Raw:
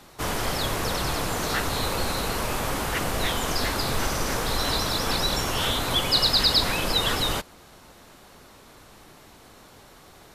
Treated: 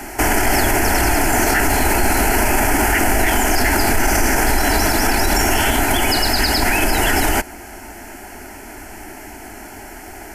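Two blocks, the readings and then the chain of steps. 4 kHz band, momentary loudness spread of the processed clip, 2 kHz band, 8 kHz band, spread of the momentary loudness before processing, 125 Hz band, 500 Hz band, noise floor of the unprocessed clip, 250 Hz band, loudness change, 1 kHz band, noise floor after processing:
+0.5 dB, 19 LU, +12.5 dB, +11.5 dB, 8 LU, +7.5 dB, +9.5 dB, −51 dBFS, +12.0 dB, +8.5 dB, +10.5 dB, −36 dBFS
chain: speech leveller within 4 dB
phaser with its sweep stopped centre 760 Hz, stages 8
boost into a limiter +24 dB
level −5.5 dB

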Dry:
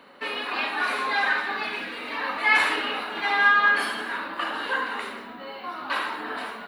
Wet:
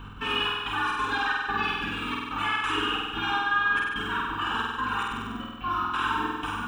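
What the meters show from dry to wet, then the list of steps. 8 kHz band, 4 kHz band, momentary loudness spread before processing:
−3.5 dB, +1.0 dB, 14 LU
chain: reverb reduction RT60 1.5 s
in parallel at −2 dB: speech leveller within 5 dB 2 s
on the sum: low-shelf EQ 140 Hz +8.5 dB
notch filter 3,800 Hz, Q 28
mains hum 50 Hz, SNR 19 dB
downward compressor, threshold −19 dBFS, peak gain reduction 9.5 dB
phaser with its sweep stopped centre 3,000 Hz, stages 8
brickwall limiter −21 dBFS, peak gain reduction 8 dB
gate pattern "x.xxxx..xx" 182 BPM
on a send: flutter between parallel walls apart 8.3 metres, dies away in 1.4 s

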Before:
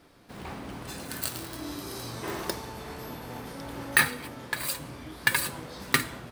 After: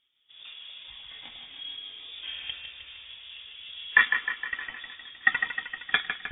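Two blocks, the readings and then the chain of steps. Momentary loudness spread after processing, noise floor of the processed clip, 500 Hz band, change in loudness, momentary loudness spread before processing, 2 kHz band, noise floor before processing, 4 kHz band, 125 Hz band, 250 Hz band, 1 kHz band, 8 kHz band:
19 LU, −53 dBFS, below −15 dB, +2.5 dB, 15 LU, +3.5 dB, −47 dBFS, +2.0 dB, below −15 dB, below −15 dB, −3.0 dB, below −40 dB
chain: feedback echo with a high-pass in the loop 155 ms, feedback 71%, high-pass 280 Hz, level −5 dB
voice inversion scrambler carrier 3,600 Hz
every bin expanded away from the loudest bin 1.5 to 1

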